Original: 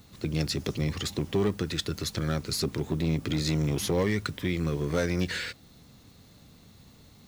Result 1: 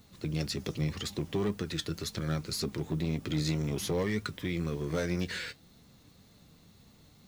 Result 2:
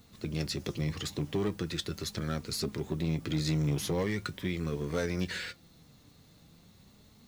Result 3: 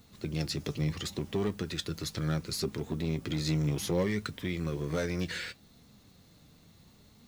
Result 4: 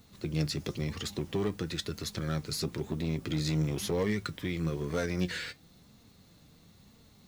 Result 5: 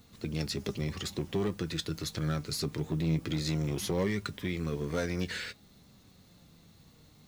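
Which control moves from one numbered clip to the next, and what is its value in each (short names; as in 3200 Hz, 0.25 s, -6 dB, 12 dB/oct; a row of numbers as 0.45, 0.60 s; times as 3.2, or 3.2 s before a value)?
flange, rate: 1.9, 0.41, 0.69, 1, 0.2 Hz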